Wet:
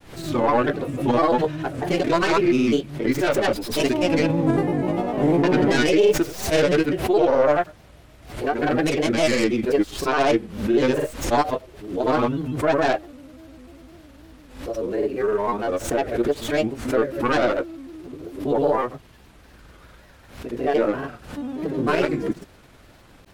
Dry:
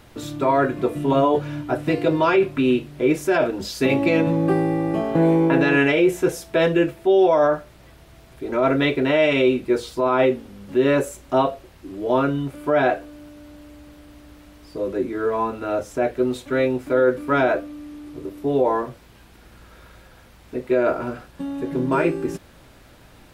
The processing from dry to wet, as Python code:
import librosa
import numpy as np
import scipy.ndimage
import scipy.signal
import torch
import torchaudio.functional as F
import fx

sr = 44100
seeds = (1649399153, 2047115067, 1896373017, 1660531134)

y = fx.tracing_dist(x, sr, depth_ms=0.23)
y = fx.granulator(y, sr, seeds[0], grain_ms=100.0, per_s=20.0, spray_ms=100.0, spread_st=3)
y = fx.pre_swell(y, sr, db_per_s=100.0)